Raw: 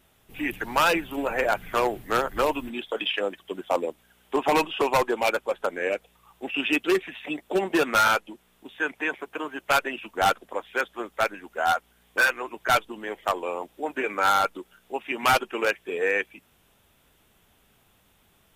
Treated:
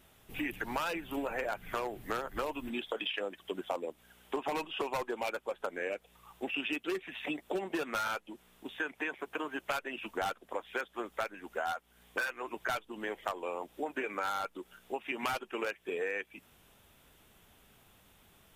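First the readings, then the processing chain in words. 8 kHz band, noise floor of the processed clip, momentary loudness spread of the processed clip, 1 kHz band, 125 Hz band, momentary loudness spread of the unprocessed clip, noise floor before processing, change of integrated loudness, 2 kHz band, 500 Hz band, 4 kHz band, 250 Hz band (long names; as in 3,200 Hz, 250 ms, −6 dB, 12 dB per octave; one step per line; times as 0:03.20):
−13.0 dB, −65 dBFS, 6 LU, −12.5 dB, −10.5 dB, 11 LU, −63 dBFS, −11.0 dB, −11.0 dB, −10.5 dB, −10.5 dB, −9.0 dB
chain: downward compressor 6 to 1, threshold −33 dBFS, peak gain reduction 15.5 dB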